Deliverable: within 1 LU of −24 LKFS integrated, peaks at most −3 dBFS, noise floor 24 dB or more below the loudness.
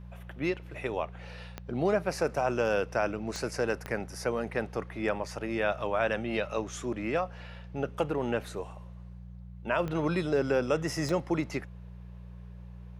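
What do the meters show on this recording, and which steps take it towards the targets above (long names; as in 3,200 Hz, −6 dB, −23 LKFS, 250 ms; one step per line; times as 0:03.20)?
number of clicks 5; mains hum 60 Hz; hum harmonics up to 180 Hz; level of the hum −42 dBFS; integrated loudness −31.5 LKFS; sample peak −15.0 dBFS; target loudness −24.0 LKFS
→ click removal
hum removal 60 Hz, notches 3
level +7.5 dB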